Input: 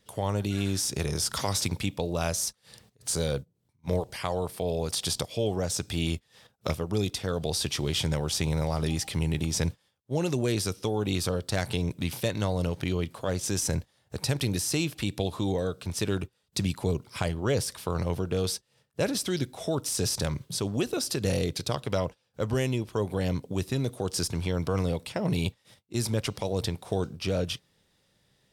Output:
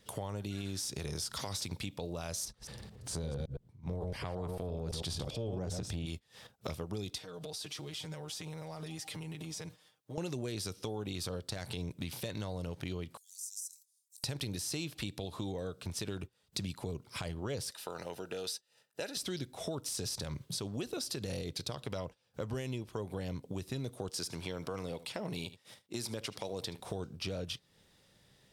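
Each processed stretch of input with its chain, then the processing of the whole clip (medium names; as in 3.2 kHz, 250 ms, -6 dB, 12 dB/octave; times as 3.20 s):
2.45–6.06 s: chunks repeated in reverse 112 ms, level -7 dB + tilt EQ -2.5 dB/octave + transient shaper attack -6 dB, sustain +5 dB
7.18–10.18 s: bass shelf 140 Hz -12 dB + compression 4:1, threshold -45 dBFS + comb 6.5 ms, depth 85%
13.17–14.24 s: inverse Chebyshev high-pass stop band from 1.2 kHz, stop band 80 dB + compression 2:1, threshold -44 dBFS
17.71–19.17 s: high-pass 830 Hz 6 dB/octave + comb of notches 1.1 kHz
24.09–26.80 s: high-pass 270 Hz 6 dB/octave + delay 75 ms -19 dB
whole clip: dynamic bell 4.1 kHz, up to +4 dB, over -45 dBFS, Q 2; peak limiter -17.5 dBFS; compression 3:1, threshold -42 dBFS; trim +2.5 dB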